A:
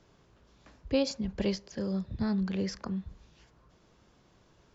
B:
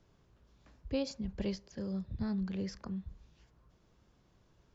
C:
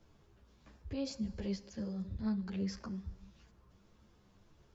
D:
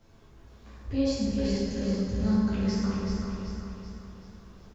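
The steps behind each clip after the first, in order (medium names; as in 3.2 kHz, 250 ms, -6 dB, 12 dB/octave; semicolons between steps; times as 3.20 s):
bass shelf 150 Hz +8 dB; trim -8 dB
peak limiter -35 dBFS, peak gain reduction 11 dB; plate-style reverb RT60 1.8 s, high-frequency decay 0.8×, DRR 16 dB; three-phase chorus; trim +5 dB
feedback delay 382 ms, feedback 48%, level -5 dB; plate-style reverb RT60 2 s, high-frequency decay 0.6×, DRR -6.5 dB; trim +3.5 dB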